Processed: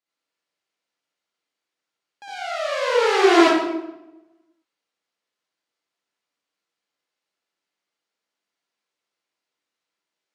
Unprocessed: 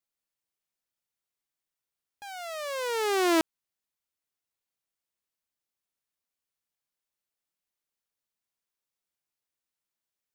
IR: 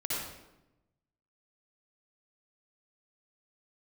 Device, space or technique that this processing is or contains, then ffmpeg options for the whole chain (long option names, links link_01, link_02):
supermarket ceiling speaker: -filter_complex "[0:a]highpass=250,lowpass=5400[link_01];[1:a]atrim=start_sample=2205[link_02];[link_01][link_02]afir=irnorm=-1:irlink=0,volume=5dB"